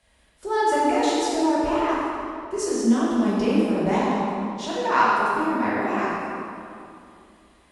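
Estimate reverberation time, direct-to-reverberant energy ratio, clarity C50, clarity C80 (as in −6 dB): 2.6 s, −8.5 dB, −3.0 dB, −1.0 dB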